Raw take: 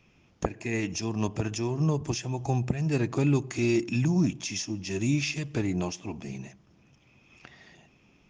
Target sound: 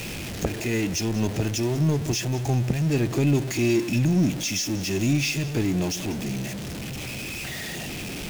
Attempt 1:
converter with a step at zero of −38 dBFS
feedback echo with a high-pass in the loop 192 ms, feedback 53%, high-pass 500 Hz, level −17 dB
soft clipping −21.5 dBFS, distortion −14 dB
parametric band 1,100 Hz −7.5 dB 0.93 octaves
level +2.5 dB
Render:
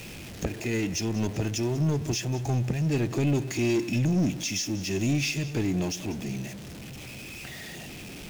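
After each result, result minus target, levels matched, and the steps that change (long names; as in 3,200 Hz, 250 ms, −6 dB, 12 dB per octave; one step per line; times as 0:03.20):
soft clipping: distortion +14 dB; converter with a step at zero: distortion −7 dB
change: soft clipping −12 dBFS, distortion −28 dB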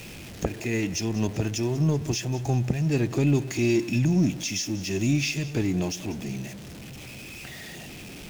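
converter with a step at zero: distortion −7 dB
change: converter with a step at zero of −29.5 dBFS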